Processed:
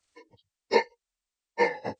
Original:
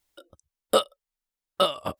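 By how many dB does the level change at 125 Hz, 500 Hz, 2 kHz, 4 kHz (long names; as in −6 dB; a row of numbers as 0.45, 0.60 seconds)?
can't be measured, −1.5 dB, +10.0 dB, −11.5 dB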